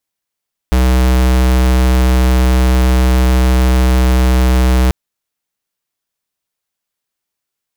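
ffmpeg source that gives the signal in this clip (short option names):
-f lavfi -i "aevalsrc='0.316*(2*lt(mod(63.3*t,1),0.5)-1)':d=4.19:s=44100"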